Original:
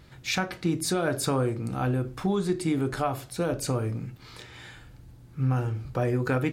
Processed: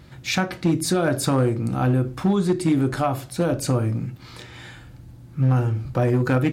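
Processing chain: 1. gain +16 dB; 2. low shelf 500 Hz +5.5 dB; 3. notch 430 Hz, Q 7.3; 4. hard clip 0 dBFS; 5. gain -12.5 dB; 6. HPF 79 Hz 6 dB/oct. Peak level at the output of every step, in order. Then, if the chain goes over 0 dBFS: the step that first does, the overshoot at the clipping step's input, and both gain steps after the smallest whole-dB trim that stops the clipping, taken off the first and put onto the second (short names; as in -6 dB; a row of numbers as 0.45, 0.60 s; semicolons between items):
+2.0, +5.0, +4.5, 0.0, -12.5, -9.0 dBFS; step 1, 4.5 dB; step 1 +11 dB, step 5 -7.5 dB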